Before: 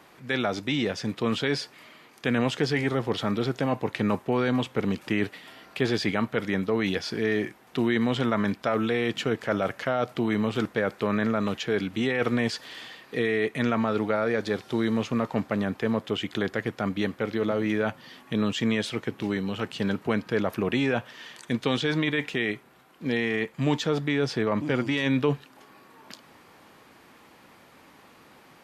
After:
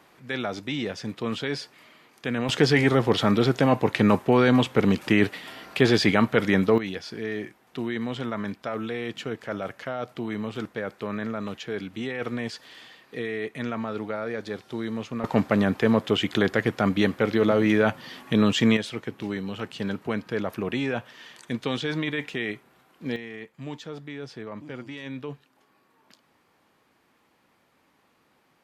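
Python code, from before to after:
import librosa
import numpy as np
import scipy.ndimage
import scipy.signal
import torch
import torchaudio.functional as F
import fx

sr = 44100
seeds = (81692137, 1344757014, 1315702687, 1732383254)

y = fx.gain(x, sr, db=fx.steps((0.0, -3.0), (2.49, 6.0), (6.78, -5.5), (15.24, 5.5), (18.77, -2.5), (23.16, -12.0)))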